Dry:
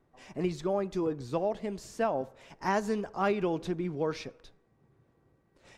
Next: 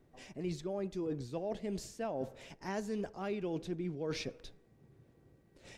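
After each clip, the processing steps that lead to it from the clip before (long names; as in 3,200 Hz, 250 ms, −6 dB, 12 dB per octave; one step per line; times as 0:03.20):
parametric band 1,100 Hz −8.5 dB 1.2 octaves
reversed playback
downward compressor, threshold −39 dBFS, peak gain reduction 13 dB
reversed playback
level +4 dB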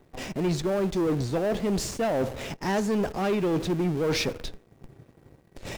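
leveller curve on the samples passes 2
in parallel at −12 dB: comparator with hysteresis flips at −44.5 dBFS
on the sum: level +6 dB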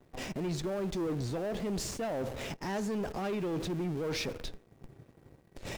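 noise gate with hold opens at −48 dBFS
brickwall limiter −25.5 dBFS, peak gain reduction 6.5 dB
level −3.5 dB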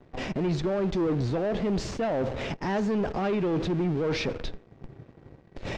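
high-frequency loss of the air 150 metres
level +7.5 dB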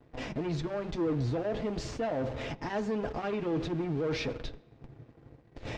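notch comb filter 190 Hz
on a send at −21 dB: convolution reverb RT60 1.1 s, pre-delay 3 ms
on the sum: level −3.5 dB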